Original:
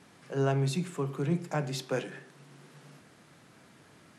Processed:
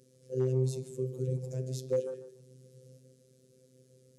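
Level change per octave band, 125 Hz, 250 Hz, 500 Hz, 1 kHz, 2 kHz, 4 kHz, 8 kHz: -1.5 dB, -6.0 dB, +0.5 dB, under -20 dB, under -20 dB, -11.5 dB, -4.5 dB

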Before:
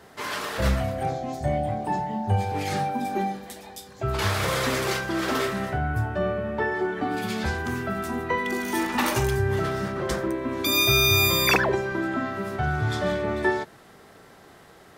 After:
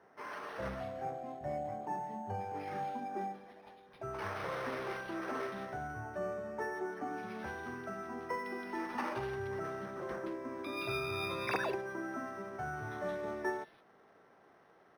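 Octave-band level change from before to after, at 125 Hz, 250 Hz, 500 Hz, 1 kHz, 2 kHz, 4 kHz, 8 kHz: -20.5 dB, -14.5 dB, -12.0 dB, -11.0 dB, -15.0 dB, -23.0 dB, -26.0 dB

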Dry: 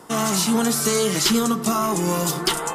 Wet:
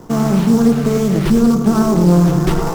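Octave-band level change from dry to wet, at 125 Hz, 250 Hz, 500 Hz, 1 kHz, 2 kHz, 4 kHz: +14.0 dB, +10.5 dB, +6.0 dB, +1.0 dB, -1.0 dB, -8.0 dB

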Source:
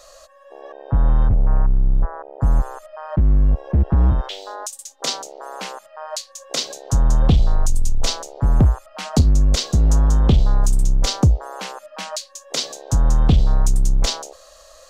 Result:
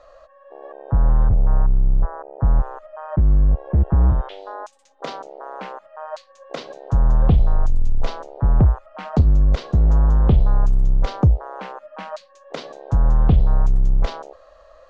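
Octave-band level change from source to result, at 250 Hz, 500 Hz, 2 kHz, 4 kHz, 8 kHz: -2.0 dB, -0.5 dB, -4.0 dB, -15.0 dB, under -20 dB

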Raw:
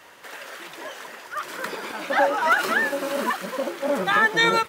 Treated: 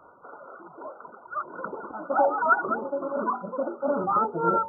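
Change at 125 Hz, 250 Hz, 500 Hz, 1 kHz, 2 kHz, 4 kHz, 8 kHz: no reading, -2.0 dB, -2.0 dB, -1.0 dB, -11.5 dB, under -40 dB, under -40 dB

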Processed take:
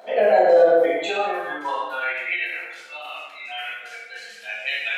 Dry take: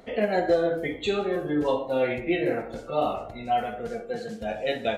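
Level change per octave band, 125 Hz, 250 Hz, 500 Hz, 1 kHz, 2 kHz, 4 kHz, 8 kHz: under -15 dB, -7.0 dB, +5.5 dB, +4.5 dB, +9.0 dB, +5.0 dB, no reading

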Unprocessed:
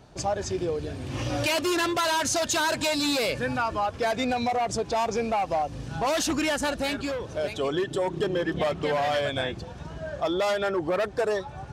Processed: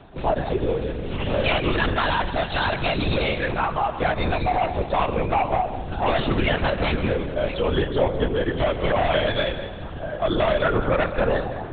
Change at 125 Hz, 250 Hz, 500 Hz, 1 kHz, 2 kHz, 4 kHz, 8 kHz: +9.0 dB, +2.5 dB, +3.5 dB, +4.0 dB, +4.0 dB, +1.0 dB, under -40 dB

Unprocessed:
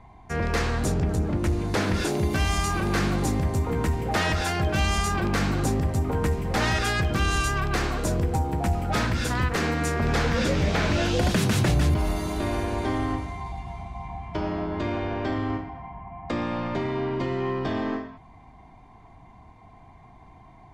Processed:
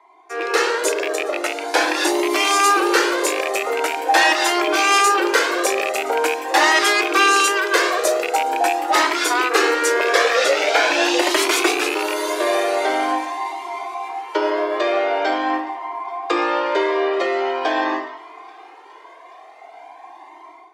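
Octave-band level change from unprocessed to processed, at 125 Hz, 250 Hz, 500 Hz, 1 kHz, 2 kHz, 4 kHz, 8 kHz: under -40 dB, +1.0 dB, +10.0 dB, +11.5 dB, +11.5 dB, +11.0 dB, +11.0 dB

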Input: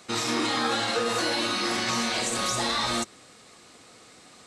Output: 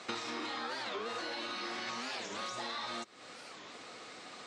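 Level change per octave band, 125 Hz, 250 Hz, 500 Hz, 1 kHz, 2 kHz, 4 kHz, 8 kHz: -19.5 dB, -15.0 dB, -12.5 dB, -11.5 dB, -11.0 dB, -13.0 dB, -18.0 dB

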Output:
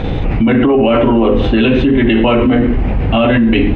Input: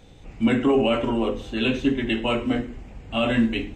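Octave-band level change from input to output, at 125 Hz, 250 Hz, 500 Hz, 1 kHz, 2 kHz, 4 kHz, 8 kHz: +16.0 dB, +12.0 dB, +11.5 dB, +11.5 dB, +9.5 dB, +7.0 dB, no reading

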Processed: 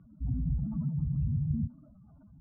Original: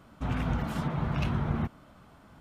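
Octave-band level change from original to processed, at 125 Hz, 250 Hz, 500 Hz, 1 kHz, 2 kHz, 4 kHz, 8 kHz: +0.5 dB, -2.0 dB, under -25 dB, under -25 dB, under -40 dB, under -40 dB, no reading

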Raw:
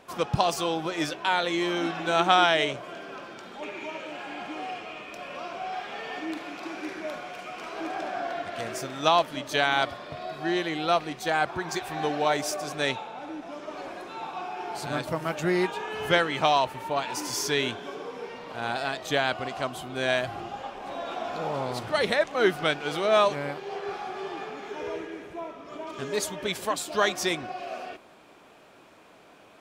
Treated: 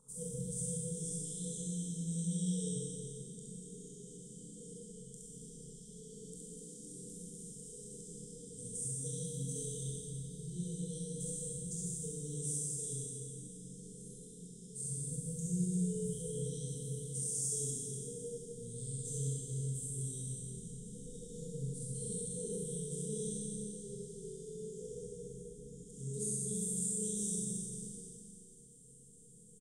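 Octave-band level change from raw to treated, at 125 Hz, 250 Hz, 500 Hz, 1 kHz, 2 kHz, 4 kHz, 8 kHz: 0.0 dB, -8.5 dB, -17.5 dB, under -40 dB, under -40 dB, -25.0 dB, +2.5 dB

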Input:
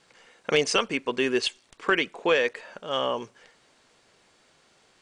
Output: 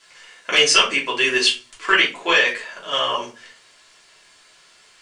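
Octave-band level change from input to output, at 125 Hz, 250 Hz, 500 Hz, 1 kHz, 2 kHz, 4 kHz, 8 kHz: -2.0 dB, -0.5 dB, +0.5 dB, +7.0 dB, +10.5 dB, +12.5 dB, +12.0 dB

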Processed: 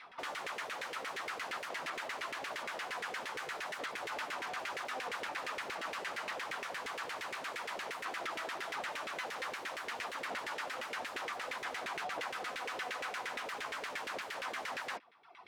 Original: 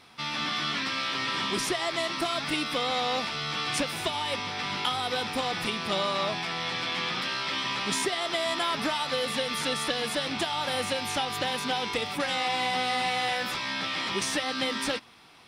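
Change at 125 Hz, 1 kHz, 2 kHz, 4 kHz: -23.0 dB, -10.0 dB, -8.0 dB, -16.5 dB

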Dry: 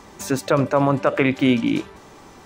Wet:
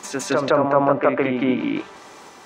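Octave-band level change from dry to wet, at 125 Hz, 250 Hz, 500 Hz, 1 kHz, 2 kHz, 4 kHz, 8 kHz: -7.0 dB, -2.0 dB, +2.0 dB, +3.0 dB, -1.0 dB, -2.5 dB, no reading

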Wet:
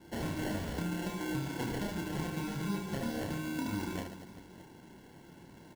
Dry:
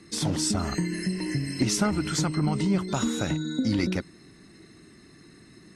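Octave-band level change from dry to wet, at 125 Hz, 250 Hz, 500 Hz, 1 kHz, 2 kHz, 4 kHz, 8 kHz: -10.0 dB, -9.5 dB, -7.0 dB, -6.5 dB, -6.0 dB, -12.5 dB, -16.5 dB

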